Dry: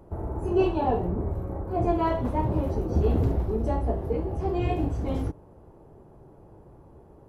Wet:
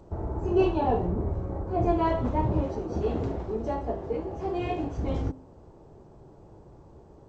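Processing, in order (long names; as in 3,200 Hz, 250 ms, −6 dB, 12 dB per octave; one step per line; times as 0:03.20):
0:02.66–0:04.98: low-shelf EQ 170 Hz −11.5 dB
hum removal 261.8 Hz, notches 6
G.722 64 kbit/s 16,000 Hz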